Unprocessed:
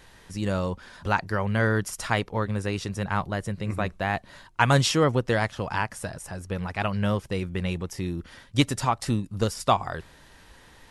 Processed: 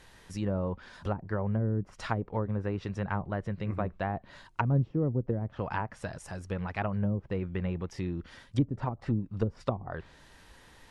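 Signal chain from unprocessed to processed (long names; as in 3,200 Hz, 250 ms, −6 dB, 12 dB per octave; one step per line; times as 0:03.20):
treble cut that deepens with the level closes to 330 Hz, closed at −19.5 dBFS
level −3.5 dB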